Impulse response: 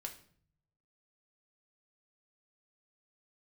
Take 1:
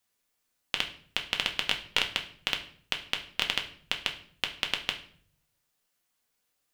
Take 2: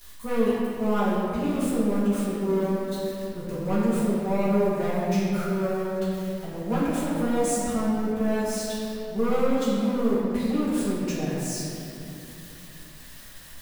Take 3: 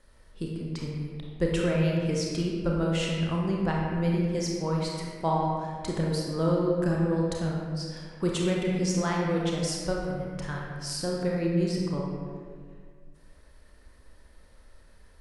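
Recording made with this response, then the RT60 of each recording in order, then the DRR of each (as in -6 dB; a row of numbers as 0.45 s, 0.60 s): 1; 0.55 s, 2.8 s, 1.9 s; 3.0 dB, -11.5 dB, -2.5 dB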